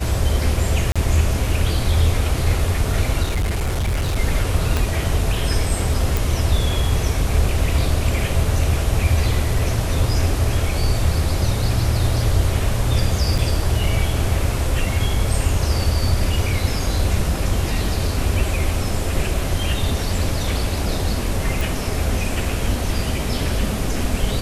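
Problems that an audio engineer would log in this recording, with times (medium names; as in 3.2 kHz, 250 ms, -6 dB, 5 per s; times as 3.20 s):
0.92–0.96 s: dropout 36 ms
3.23–4.16 s: clipped -17 dBFS
4.77 s: pop -6 dBFS
6.17 s: pop
13.38 s: dropout 4.7 ms
21.61 s: pop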